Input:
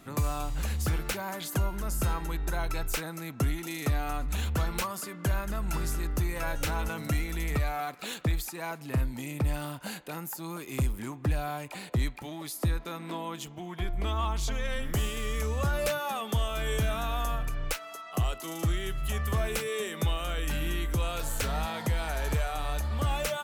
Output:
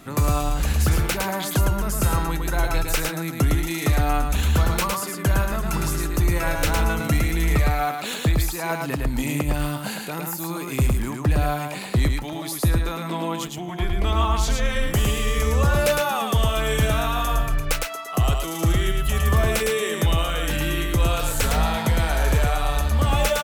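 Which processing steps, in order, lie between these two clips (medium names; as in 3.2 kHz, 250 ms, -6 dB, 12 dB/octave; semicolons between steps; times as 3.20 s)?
8.69–9.49 s: compressor with a negative ratio -29 dBFS, ratio -0.5; delay 109 ms -3.5 dB; trim +7.5 dB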